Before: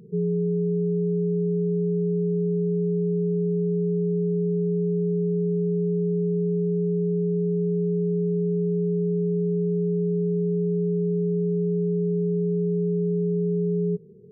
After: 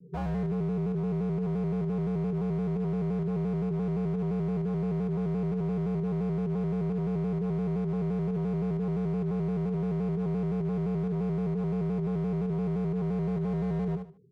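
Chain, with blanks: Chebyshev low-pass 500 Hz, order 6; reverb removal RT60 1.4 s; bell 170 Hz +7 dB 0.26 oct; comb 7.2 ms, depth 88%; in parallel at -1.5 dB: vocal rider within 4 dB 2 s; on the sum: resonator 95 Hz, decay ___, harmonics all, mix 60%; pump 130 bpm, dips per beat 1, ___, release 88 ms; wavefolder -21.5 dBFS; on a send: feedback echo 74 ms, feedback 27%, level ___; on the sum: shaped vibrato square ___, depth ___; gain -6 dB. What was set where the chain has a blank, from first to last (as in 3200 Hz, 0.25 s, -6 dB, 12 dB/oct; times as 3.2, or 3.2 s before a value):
1.8 s, -6 dB, -6.5 dB, 5.8 Hz, 100 cents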